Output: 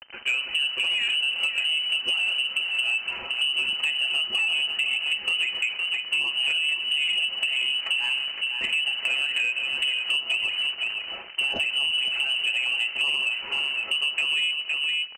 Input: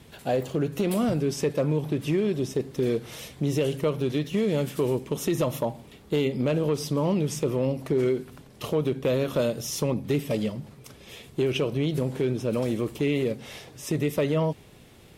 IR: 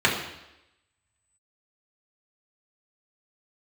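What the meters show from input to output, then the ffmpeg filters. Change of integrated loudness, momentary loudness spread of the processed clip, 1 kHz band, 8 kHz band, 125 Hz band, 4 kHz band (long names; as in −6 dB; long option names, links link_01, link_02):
+4.0 dB, 3 LU, −5.0 dB, −3.0 dB, below −30 dB, +19.0 dB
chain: -filter_complex "[0:a]aecho=1:1:6.6:0.6,alimiter=limit=-15dB:level=0:latency=1:release=63,acrusher=bits=6:mix=0:aa=0.000001,asplit=2[link_01][link_02];[link_02]adelay=513.1,volume=-9dB,highshelf=frequency=4000:gain=-11.5[link_03];[link_01][link_03]amix=inputs=2:normalize=0,asplit=2[link_04][link_05];[1:a]atrim=start_sample=2205,lowpass=3300[link_06];[link_05][link_06]afir=irnorm=-1:irlink=0,volume=-31dB[link_07];[link_04][link_07]amix=inputs=2:normalize=0,lowpass=frequency=2600:width_type=q:width=0.5098,lowpass=frequency=2600:width_type=q:width=0.6013,lowpass=frequency=2600:width_type=q:width=0.9,lowpass=frequency=2600:width_type=q:width=2.563,afreqshift=-3100,acompressor=threshold=-27dB:ratio=6,asoftclip=type=tanh:threshold=-23dB,lowshelf=frequency=220:gain=-3,volume=6.5dB"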